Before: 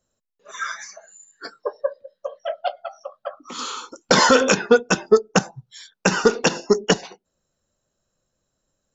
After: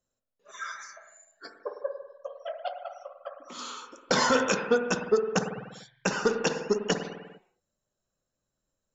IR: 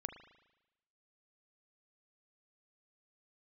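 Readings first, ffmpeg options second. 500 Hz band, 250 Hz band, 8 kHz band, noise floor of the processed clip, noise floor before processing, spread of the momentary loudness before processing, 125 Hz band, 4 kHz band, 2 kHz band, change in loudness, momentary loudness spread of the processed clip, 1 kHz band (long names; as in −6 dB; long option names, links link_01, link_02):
−8.5 dB, −8.5 dB, can't be measured, −85 dBFS, −78 dBFS, 20 LU, −8.5 dB, −9.5 dB, −8.5 dB, −8.5 dB, 18 LU, −8.0 dB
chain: -filter_complex "[1:a]atrim=start_sample=2205,afade=type=out:start_time=0.39:duration=0.01,atrim=end_sample=17640,asetrate=33075,aresample=44100[link_01];[0:a][link_01]afir=irnorm=-1:irlink=0,volume=-7.5dB"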